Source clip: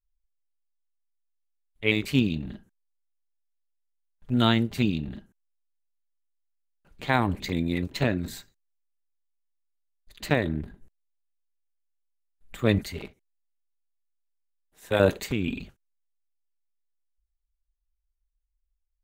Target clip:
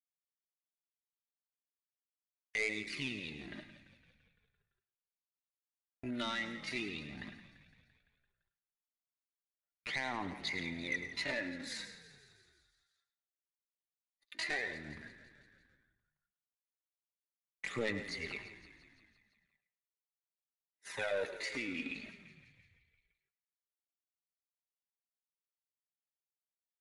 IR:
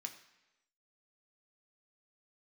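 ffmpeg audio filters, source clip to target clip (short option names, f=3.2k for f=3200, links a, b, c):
-filter_complex "[0:a]highpass=f=760:p=1,agate=range=-43dB:threshold=-53dB:ratio=16:detection=peak,equalizer=f=2k:t=o:w=0.33:g=10,equalizer=f=3.15k:t=o:w=0.33:g=-5,equalizer=f=5k:t=o:w=0.33:g=3,equalizer=f=8k:t=o:w=0.33:g=-12,acompressor=threshold=-44dB:ratio=2.5,atempo=0.71,aphaser=in_gain=1:out_gain=1:delay=3.6:decay=0.53:speed=0.39:type=sinusoidal,asoftclip=type=tanh:threshold=-31dB,asplit=8[a][b][c][d][e][f][g][h];[b]adelay=170,afreqshift=-32,volume=-15dB[i];[c]adelay=340,afreqshift=-64,volume=-19dB[j];[d]adelay=510,afreqshift=-96,volume=-23dB[k];[e]adelay=680,afreqshift=-128,volume=-27dB[l];[f]adelay=850,afreqshift=-160,volume=-31.1dB[m];[g]adelay=1020,afreqshift=-192,volume=-35.1dB[n];[h]adelay=1190,afreqshift=-224,volume=-39.1dB[o];[a][i][j][k][l][m][n][o]amix=inputs=8:normalize=0,asplit=2[p][q];[1:a]atrim=start_sample=2205,adelay=104[r];[q][r]afir=irnorm=-1:irlink=0,volume=-8dB[s];[p][s]amix=inputs=2:normalize=0,volume=4dB" -ar 24000 -c:a libmp3lame -b:a 80k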